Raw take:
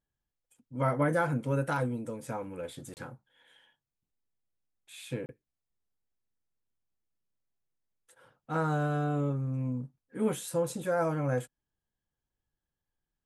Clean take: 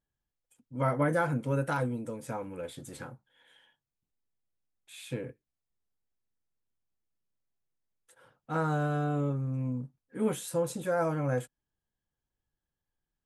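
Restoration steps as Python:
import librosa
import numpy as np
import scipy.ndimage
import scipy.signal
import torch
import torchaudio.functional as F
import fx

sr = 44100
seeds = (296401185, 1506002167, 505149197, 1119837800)

y = fx.fix_interpolate(x, sr, at_s=(2.94, 5.26), length_ms=29.0)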